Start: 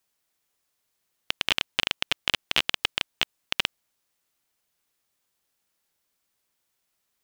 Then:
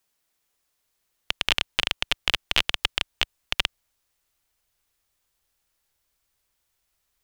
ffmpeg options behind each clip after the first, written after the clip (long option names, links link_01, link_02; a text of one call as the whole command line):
ffmpeg -i in.wav -af "asubboost=boost=6.5:cutoff=75,volume=1.5dB" out.wav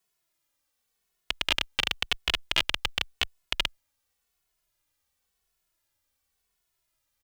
ffmpeg -i in.wav -filter_complex "[0:a]asplit=2[link_01][link_02];[link_02]adelay=2.3,afreqshift=-0.92[link_03];[link_01][link_03]amix=inputs=2:normalize=1" out.wav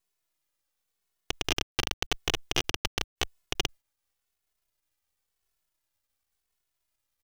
ffmpeg -i in.wav -af "aeval=exprs='max(val(0),0)':channel_layout=same" out.wav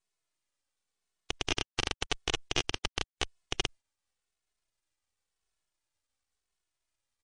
ffmpeg -i in.wav -af "volume=-2dB" -ar 22050 -c:a libmp3lame -b:a 48k out.mp3